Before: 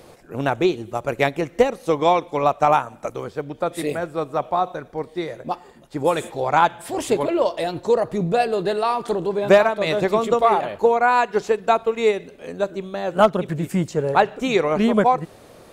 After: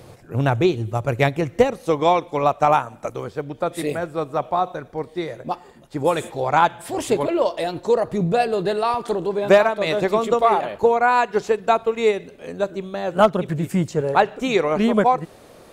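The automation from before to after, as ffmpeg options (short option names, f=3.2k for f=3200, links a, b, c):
-af "asetnsamples=n=441:p=0,asendcmd='1.81 equalizer g 3.5;7.27 equalizer g -3;8.07 equalizer g 7;8.94 equalizer g -4;10.83 equalizer g 4;14.01 equalizer g -2.5',equalizer=f=110:t=o:w=0.85:g=14"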